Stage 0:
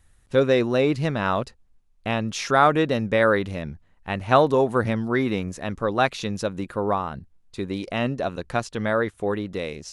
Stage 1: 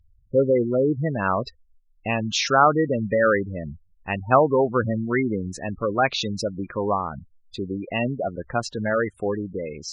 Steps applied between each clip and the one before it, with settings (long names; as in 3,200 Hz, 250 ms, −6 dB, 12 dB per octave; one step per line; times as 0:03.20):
gate on every frequency bin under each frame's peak −15 dB strong
parametric band 3,800 Hz +10 dB 1.5 octaves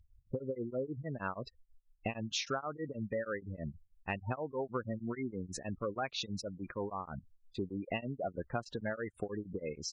downward compressor 10 to 1, threshold −29 dBFS, peak gain reduction 18.5 dB
tremolo along a rectified sine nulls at 6.3 Hz
level −2.5 dB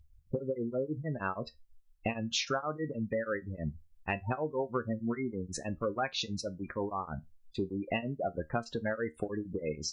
tuned comb filter 77 Hz, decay 0.18 s, harmonics all, mix 60%
level +7.5 dB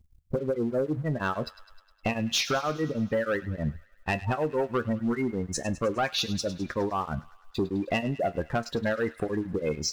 leveller curve on the samples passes 2
delay with a high-pass on its return 103 ms, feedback 64%, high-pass 1,600 Hz, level −14.5 dB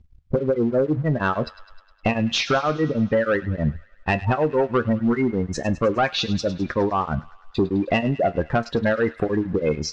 high-frequency loss of the air 140 metres
level +7.5 dB